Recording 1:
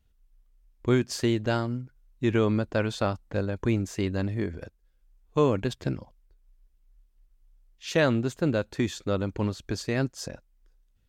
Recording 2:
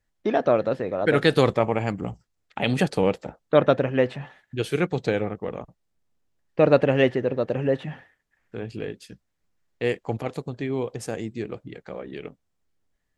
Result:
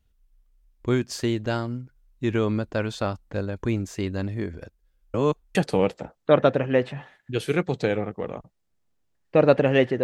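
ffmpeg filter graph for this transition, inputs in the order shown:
-filter_complex "[0:a]apad=whole_dur=10.03,atrim=end=10.03,asplit=2[a][b];[a]atrim=end=5.142[c];[b]atrim=start=5.138:end=5.552,asetpts=PTS-STARTPTS,areverse[d];[1:a]atrim=start=2.788:end=7.27[e];[c][d]acrossfade=d=0.004:c1=hsin:c2=hsin[f];[f][e]acrossfade=d=0.004:c1=hsin:c2=hsin"

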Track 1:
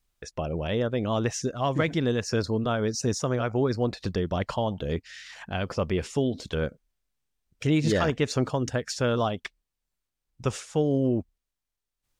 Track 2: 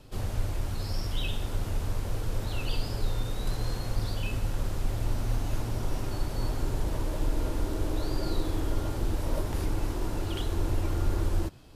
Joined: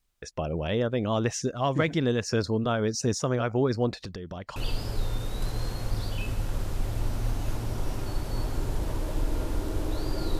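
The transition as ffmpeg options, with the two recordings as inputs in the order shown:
-filter_complex "[0:a]asettb=1/sr,asplit=3[a][b][c];[a]atrim=end=3.984[d];[b]atrim=start=3.98:end=4.56,asetpts=PTS-STARTPTS,afade=t=in:d=0.004:c=qsin,afade=t=out:st=0.576:d=0.004:c=qsin,acompressor=threshold=-33dB:ratio=12:attack=3.2:release=140:knee=1:detection=peak[e];[c]atrim=start=4.556[f];[d][e]acrossfade=d=0.004:c1=hsin:c2=qsin[g];[g][f]acrossfade=d=0.004:c1=qsin:c2=hsin,apad=whole_dur=10.39,atrim=end=10.39,atrim=end=4.562[h];[1:a]atrim=start=2.608:end=8.44[i];[h][i]acrossfade=d=0.004:c1=hsin:c2=hsin"

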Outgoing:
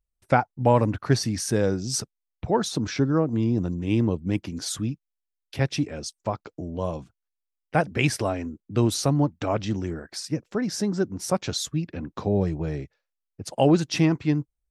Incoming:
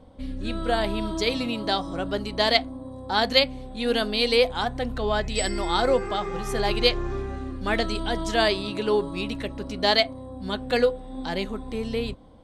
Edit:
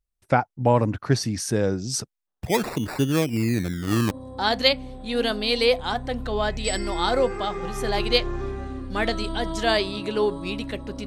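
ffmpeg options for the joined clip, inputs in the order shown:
-filter_complex "[0:a]asplit=3[a][b][c];[a]afade=t=out:st=2.26:d=0.02[d];[b]acrusher=samples=27:mix=1:aa=0.000001:lfo=1:lforange=27:lforate=0.26,afade=t=in:st=2.26:d=0.02,afade=t=out:st=4.11:d=0.02[e];[c]afade=t=in:st=4.11:d=0.02[f];[d][e][f]amix=inputs=3:normalize=0,apad=whole_dur=11.06,atrim=end=11.06,atrim=end=4.112[g];[1:a]atrim=start=2.818:end=9.77[h];[g][h]acrossfade=d=0.004:c1=hsin:c2=hsin"

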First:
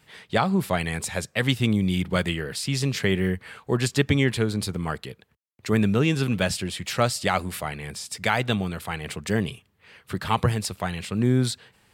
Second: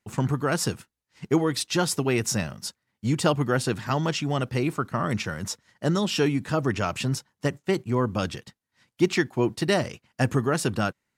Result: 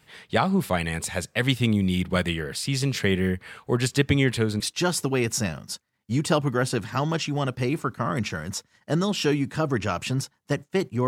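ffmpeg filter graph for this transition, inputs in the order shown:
-filter_complex "[0:a]apad=whole_dur=11.07,atrim=end=11.07,atrim=end=4.602[a];[1:a]atrim=start=1.538:end=8.01[b];[a][b]acrossfade=d=0.004:c1=hsin:c2=hsin"

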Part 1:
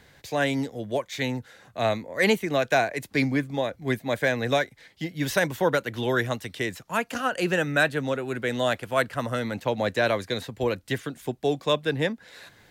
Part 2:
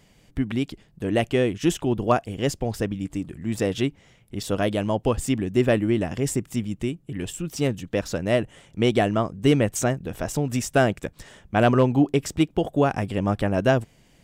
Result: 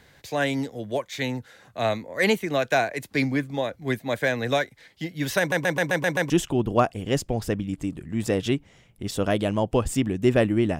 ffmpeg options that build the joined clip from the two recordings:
-filter_complex "[0:a]apad=whole_dur=10.79,atrim=end=10.79,asplit=7[a][b][c][d][e][f][g];[a]atrim=end=5.522[h];[b]atrim=start=5.388:end=5.522[i];[c]atrim=start=5.388:end=5.522[j];[d]atrim=start=5.388:end=5.522[k];[e]atrim=start=5.388:end=5.522[l];[f]atrim=start=5.388:end=5.522[m];[g]atrim=start=5.388:end=5.522[n];[1:a]atrim=start=1.618:end=6.11[o];[h][i]acrossfade=d=0.004:c1=hsin:c2=hsin[p];[p][j]acrossfade=d=0.004:c1=hsin:c2=hsin[q];[q][k]acrossfade=d=0.004:c1=hsin:c2=hsin[r];[r][l]acrossfade=d=0.004:c1=hsin:c2=hsin[s];[s][m]acrossfade=d=0.004:c1=hsin:c2=hsin[t];[t][n]acrossfade=d=0.004:c1=hsin:c2=hsin[u];[u][o]acrossfade=d=0.004:c1=hsin:c2=hsin"

